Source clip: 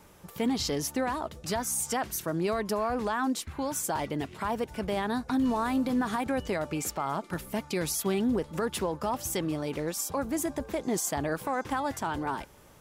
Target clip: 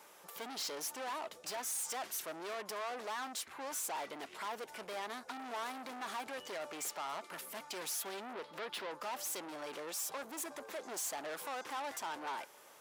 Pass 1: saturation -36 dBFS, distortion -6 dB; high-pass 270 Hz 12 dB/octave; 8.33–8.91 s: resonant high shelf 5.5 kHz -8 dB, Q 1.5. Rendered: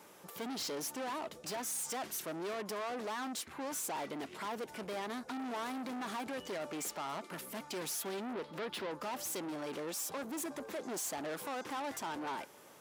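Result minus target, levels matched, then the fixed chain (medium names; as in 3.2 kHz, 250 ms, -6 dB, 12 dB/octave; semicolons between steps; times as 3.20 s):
250 Hz band +8.0 dB
saturation -36 dBFS, distortion -6 dB; high-pass 550 Hz 12 dB/octave; 8.33–8.91 s: resonant high shelf 5.5 kHz -8 dB, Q 1.5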